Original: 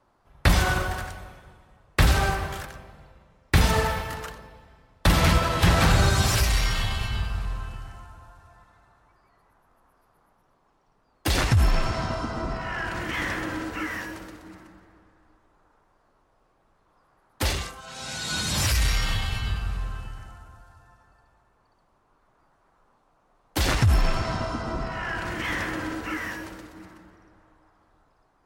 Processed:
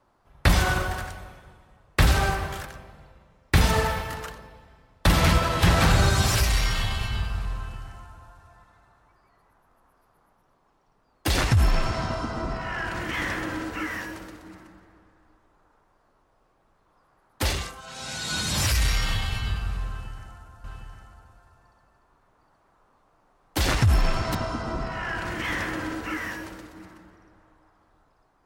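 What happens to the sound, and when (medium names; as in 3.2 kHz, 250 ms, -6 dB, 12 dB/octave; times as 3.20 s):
19.88–24.35 s: delay 760 ms -5 dB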